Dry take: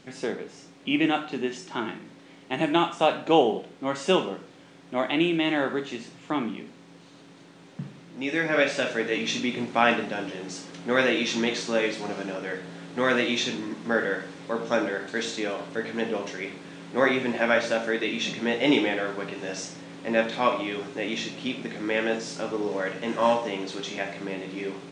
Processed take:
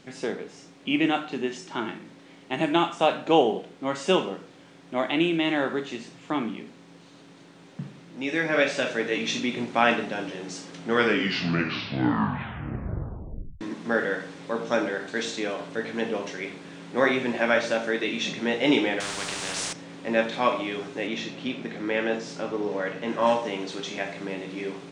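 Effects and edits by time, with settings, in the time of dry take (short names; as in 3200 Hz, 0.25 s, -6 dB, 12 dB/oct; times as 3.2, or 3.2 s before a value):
10.76 tape stop 2.85 s
19–19.73 spectral compressor 4:1
21.07–23.27 high shelf 6100 Hz -10 dB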